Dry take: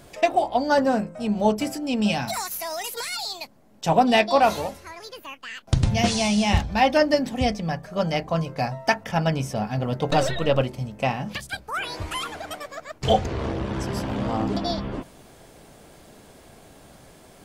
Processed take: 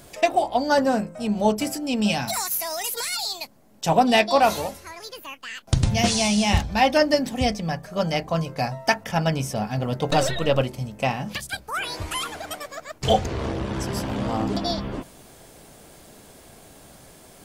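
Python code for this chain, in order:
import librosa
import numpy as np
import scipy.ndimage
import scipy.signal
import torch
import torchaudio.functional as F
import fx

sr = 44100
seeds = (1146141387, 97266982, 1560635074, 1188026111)

y = fx.high_shelf(x, sr, hz=5600.0, db=7.5)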